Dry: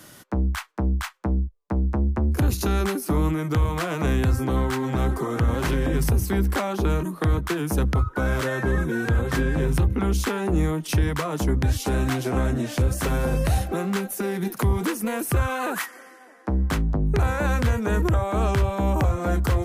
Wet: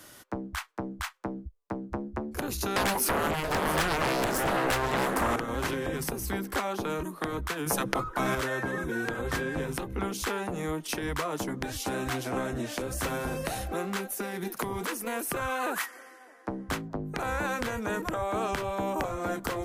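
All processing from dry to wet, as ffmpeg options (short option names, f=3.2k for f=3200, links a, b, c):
-filter_complex "[0:a]asettb=1/sr,asplit=3[a][b][c];[a]atrim=end=2.764[d];[b]atrim=start=2.76:end=5.36,asetpts=PTS-STARTPTS,afade=t=in:d=0.004:c=qsin,afade=t=out:st=2.596:d=0.004:c=qsin,acrossover=split=140|300[e][f][g];[e]acompressor=threshold=-32dB:ratio=4[h];[f]acompressor=threshold=-34dB:ratio=4[i];[g]acompressor=threshold=-36dB:ratio=4[j];[h][i][j]amix=inputs=3:normalize=0,aeval=exprs='0.15*sin(PI/2*5.01*val(0)/0.15)':c=same,aecho=1:1:676:0.224,atrim=end_sample=114660[k];[c]atrim=start=5.356[l];[d][k]acrossfade=d=0.004:c1=hsin:c2=qsin[m];[m][l]acrossfade=d=0.004:c1=qsin:c2=hsin,asettb=1/sr,asplit=3[n][o][p];[n]atrim=end=7.664[q];[o]atrim=start=7.66:end=8.35,asetpts=PTS-STARTPTS,afade=t=in:d=0.004:c=qsin,afade=t=out:st=0.686:d=0.004:c=qsin,aecho=1:1:5.9:0.33,atrim=end_sample=30429,acontrast=75[r];[p]atrim=start=8.346[s];[q][r]acrossfade=d=0.004:c1=hsin:c2=qsin[t];[t][s]acrossfade=d=0.004:c1=qsin:c2=hsin,equalizer=f=160:t=o:w=1.2:g=-8.5,afftfilt=real='re*lt(hypot(re,im),0.398)':imag='im*lt(hypot(re,im),0.398)':win_size=1024:overlap=0.75,volume=-3dB"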